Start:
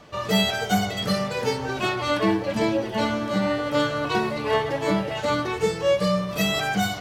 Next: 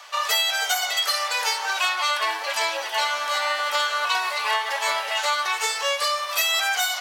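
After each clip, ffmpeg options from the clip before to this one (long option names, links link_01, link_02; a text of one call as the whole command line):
ffmpeg -i in.wav -af "highpass=frequency=830:width=0.5412,highpass=frequency=830:width=1.3066,highshelf=frequency=4000:gain=7,acompressor=threshold=-27dB:ratio=6,volume=7.5dB" out.wav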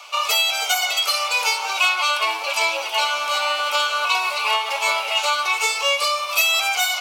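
ffmpeg -i in.wav -af "superequalizer=11b=0.251:12b=1.78,volume=2.5dB" out.wav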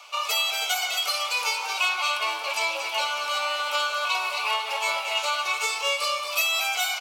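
ffmpeg -i in.wav -af "aecho=1:1:229:0.376,volume=-6dB" out.wav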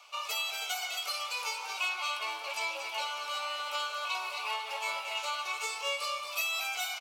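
ffmpeg -i in.wav -filter_complex "[0:a]asplit=2[link_01][link_02];[link_02]adelay=16,volume=-13dB[link_03];[link_01][link_03]amix=inputs=2:normalize=0,volume=-9dB" out.wav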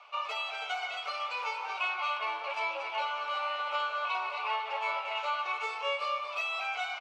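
ffmpeg -i in.wav -af "highpass=350,lowpass=2100,volume=4.5dB" out.wav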